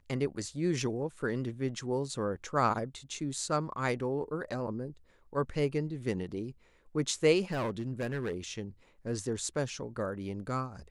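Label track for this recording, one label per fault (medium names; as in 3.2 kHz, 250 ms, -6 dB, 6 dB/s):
7.510000	8.350000	clipped -29.5 dBFS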